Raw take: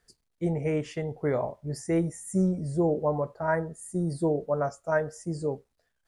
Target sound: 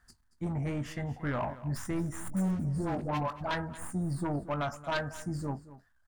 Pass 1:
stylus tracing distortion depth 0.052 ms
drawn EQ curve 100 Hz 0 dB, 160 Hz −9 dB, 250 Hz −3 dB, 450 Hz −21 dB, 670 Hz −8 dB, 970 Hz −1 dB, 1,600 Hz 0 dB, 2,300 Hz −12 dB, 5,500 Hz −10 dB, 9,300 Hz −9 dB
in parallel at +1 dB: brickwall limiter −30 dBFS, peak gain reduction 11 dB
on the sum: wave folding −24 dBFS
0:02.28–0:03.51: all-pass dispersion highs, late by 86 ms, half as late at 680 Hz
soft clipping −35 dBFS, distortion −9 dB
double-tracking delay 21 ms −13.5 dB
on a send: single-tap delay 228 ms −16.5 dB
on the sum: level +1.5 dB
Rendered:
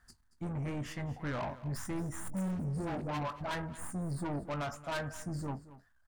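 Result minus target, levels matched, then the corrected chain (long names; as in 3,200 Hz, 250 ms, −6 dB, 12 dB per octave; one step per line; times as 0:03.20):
soft clipping: distortion +8 dB
stylus tracing distortion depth 0.052 ms
drawn EQ curve 100 Hz 0 dB, 160 Hz −9 dB, 250 Hz −3 dB, 450 Hz −21 dB, 670 Hz −8 dB, 970 Hz −1 dB, 1,600 Hz 0 dB, 2,300 Hz −12 dB, 5,500 Hz −10 dB, 9,300 Hz −9 dB
in parallel at +1 dB: brickwall limiter −30 dBFS, peak gain reduction 11 dB
on the sum: wave folding −24 dBFS
0:02.28–0:03.51: all-pass dispersion highs, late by 86 ms, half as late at 680 Hz
soft clipping −27.5 dBFS, distortion −16 dB
double-tracking delay 21 ms −13.5 dB
on a send: single-tap delay 228 ms −16.5 dB
on the sum: level +1.5 dB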